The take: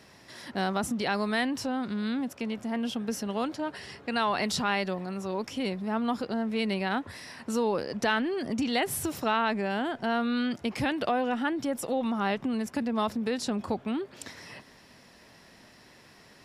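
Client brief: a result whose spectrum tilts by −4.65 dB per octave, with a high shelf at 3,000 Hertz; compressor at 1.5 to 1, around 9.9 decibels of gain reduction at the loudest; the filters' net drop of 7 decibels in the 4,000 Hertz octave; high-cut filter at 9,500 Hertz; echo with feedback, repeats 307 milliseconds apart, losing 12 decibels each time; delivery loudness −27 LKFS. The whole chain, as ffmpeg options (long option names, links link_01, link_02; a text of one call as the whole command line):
ffmpeg -i in.wav -af "lowpass=9500,highshelf=frequency=3000:gain=-7,equalizer=frequency=4000:width_type=o:gain=-4,acompressor=threshold=-52dB:ratio=1.5,aecho=1:1:307|614|921:0.251|0.0628|0.0157,volume=12.5dB" out.wav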